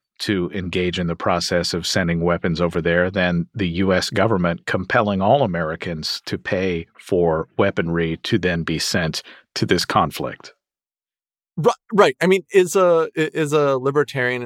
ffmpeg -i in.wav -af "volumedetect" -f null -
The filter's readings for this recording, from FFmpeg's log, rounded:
mean_volume: -20.0 dB
max_volume: -2.1 dB